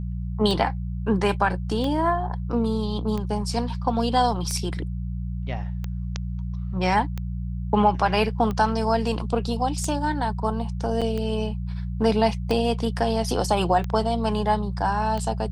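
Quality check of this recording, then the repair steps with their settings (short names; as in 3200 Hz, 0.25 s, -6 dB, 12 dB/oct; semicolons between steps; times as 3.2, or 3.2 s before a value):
hum 60 Hz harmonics 3 -29 dBFS
tick 45 rpm
11.01–11.02 gap 6.2 ms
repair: de-click; de-hum 60 Hz, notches 3; interpolate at 11.01, 6.2 ms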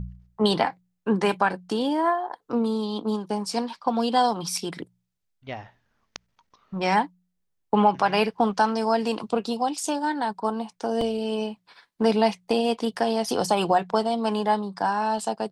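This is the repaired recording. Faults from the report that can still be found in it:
none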